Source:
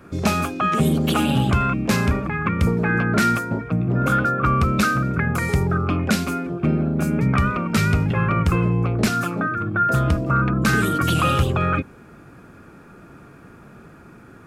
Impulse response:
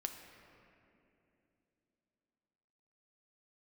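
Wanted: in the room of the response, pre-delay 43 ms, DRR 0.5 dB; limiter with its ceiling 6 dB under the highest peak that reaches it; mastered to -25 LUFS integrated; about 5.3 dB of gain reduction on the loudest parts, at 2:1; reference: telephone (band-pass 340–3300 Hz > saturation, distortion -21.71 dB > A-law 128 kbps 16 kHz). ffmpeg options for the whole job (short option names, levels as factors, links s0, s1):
-filter_complex "[0:a]acompressor=threshold=0.0631:ratio=2,alimiter=limit=0.119:level=0:latency=1,asplit=2[s0][s1];[1:a]atrim=start_sample=2205,adelay=43[s2];[s1][s2]afir=irnorm=-1:irlink=0,volume=1.06[s3];[s0][s3]amix=inputs=2:normalize=0,highpass=340,lowpass=3300,asoftclip=threshold=0.119,volume=1.5" -ar 16000 -c:a pcm_alaw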